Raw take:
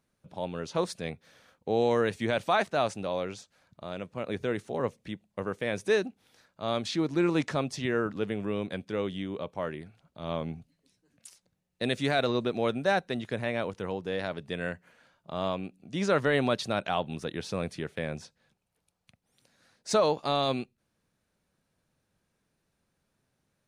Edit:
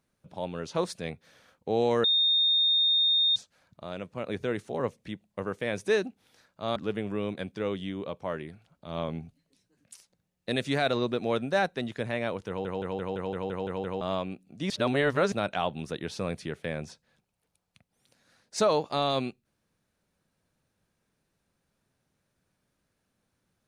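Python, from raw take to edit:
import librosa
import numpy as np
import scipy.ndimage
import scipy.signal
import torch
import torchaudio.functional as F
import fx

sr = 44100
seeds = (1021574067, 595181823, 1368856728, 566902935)

y = fx.edit(x, sr, fx.bleep(start_s=2.04, length_s=1.32, hz=3670.0, db=-20.5),
    fx.cut(start_s=6.76, length_s=1.33),
    fx.stutter_over(start_s=13.81, slice_s=0.17, count=9),
    fx.reverse_span(start_s=16.03, length_s=0.62), tone=tone)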